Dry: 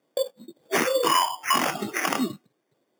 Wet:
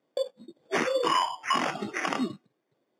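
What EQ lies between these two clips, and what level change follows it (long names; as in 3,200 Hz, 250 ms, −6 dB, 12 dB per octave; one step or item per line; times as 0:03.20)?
high-frequency loss of the air 85 metres
−3.0 dB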